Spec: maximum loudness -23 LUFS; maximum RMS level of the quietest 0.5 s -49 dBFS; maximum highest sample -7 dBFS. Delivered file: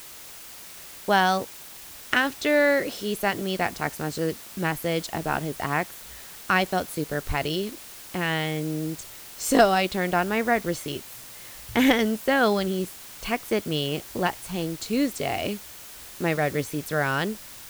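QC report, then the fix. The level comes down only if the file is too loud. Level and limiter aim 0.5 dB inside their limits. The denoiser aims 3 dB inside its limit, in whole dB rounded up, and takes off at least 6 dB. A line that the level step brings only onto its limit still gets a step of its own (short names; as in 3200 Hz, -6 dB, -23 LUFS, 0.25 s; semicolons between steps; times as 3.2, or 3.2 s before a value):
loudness -25.5 LUFS: OK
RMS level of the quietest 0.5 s -43 dBFS: fail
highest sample -6.5 dBFS: fail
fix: denoiser 9 dB, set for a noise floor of -43 dBFS; limiter -7.5 dBFS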